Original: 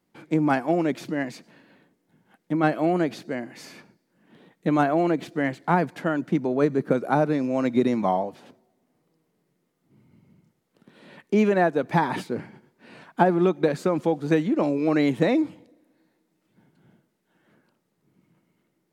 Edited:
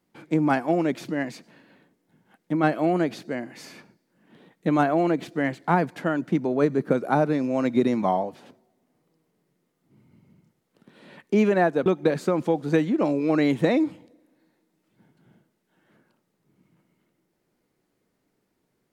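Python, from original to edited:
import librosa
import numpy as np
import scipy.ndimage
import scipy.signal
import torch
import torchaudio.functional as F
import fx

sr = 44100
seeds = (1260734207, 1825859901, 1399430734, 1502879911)

y = fx.edit(x, sr, fx.cut(start_s=11.86, length_s=1.58), tone=tone)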